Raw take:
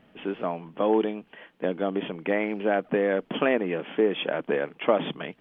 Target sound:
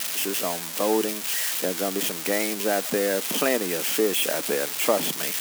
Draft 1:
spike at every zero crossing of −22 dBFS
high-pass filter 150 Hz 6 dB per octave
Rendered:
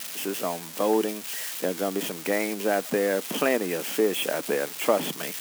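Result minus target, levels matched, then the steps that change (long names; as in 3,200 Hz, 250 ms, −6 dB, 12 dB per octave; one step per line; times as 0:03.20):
spike at every zero crossing: distortion −7 dB
change: spike at every zero crossing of −15 dBFS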